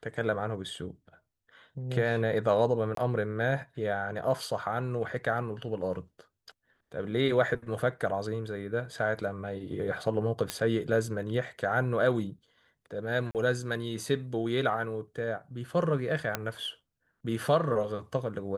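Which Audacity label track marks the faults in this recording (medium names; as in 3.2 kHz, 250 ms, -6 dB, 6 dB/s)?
2.950000	2.970000	dropout 23 ms
10.500000	10.500000	pop -13 dBFS
13.310000	13.350000	dropout 38 ms
16.350000	16.350000	pop -13 dBFS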